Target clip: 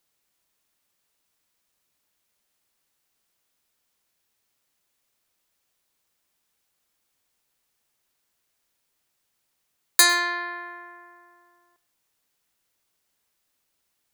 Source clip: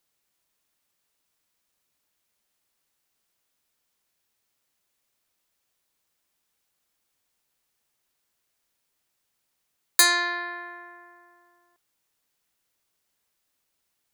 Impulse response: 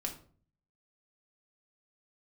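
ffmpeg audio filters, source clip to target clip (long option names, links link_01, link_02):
-filter_complex "[0:a]asplit=2[link_01][link_02];[1:a]atrim=start_sample=2205,adelay=104[link_03];[link_02][link_03]afir=irnorm=-1:irlink=0,volume=-20dB[link_04];[link_01][link_04]amix=inputs=2:normalize=0,volume=1.5dB"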